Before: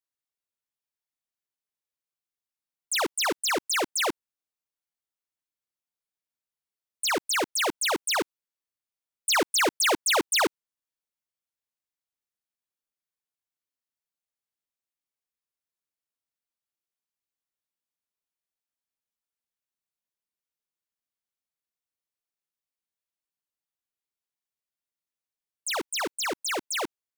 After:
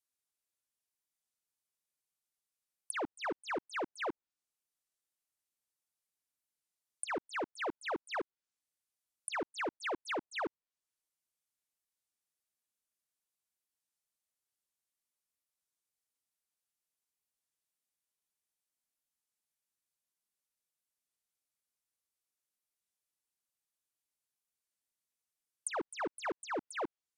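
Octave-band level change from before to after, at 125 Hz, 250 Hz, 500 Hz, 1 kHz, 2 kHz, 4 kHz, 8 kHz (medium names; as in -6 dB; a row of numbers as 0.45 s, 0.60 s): -9.0 dB, -9.0 dB, -9.5 dB, -10.5 dB, -12.5 dB, -20.5 dB, -19.0 dB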